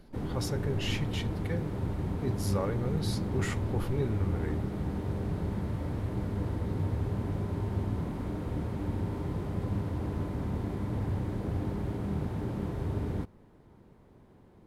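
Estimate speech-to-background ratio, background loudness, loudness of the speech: -1.5 dB, -34.0 LUFS, -35.5 LUFS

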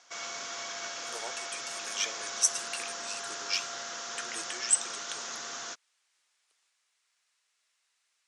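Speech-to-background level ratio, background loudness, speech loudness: 4.5 dB, -37.0 LUFS, -32.5 LUFS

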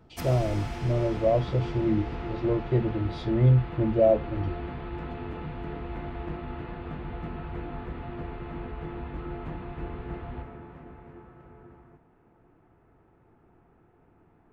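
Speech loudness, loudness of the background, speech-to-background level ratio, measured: -26.0 LUFS, -37.5 LUFS, 11.5 dB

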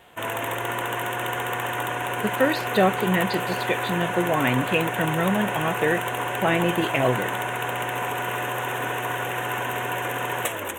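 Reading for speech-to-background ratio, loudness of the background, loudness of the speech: 2.0 dB, -27.0 LUFS, -25.0 LUFS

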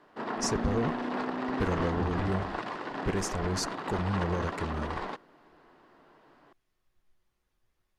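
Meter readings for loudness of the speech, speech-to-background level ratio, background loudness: -33.5 LUFS, 1.5 dB, -35.0 LUFS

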